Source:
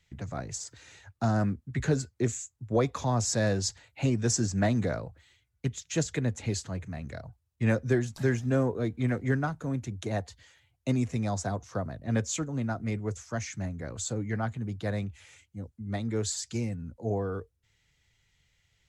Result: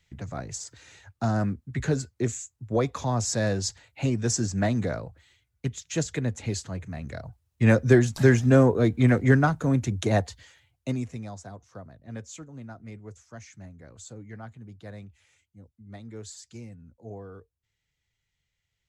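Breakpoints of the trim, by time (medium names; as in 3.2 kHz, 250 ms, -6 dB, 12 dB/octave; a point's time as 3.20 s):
6.82 s +1 dB
7.98 s +8.5 dB
10.16 s +8.5 dB
10.92 s -1.5 dB
11.40 s -10.5 dB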